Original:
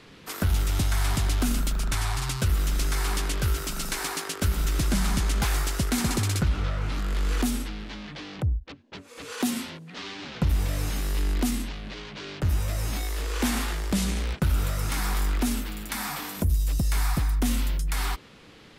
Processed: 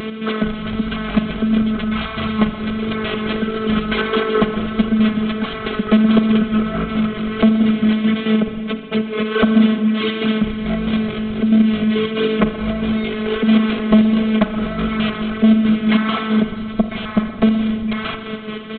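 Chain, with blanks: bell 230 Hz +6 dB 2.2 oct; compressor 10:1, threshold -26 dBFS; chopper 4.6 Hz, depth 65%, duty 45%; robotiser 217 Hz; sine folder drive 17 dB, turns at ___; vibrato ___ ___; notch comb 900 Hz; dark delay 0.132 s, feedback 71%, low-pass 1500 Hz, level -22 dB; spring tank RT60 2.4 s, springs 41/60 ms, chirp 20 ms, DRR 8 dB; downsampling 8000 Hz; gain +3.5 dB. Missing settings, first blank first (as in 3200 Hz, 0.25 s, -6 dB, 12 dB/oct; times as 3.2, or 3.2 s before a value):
-9 dBFS, 1.5 Hz, 24 cents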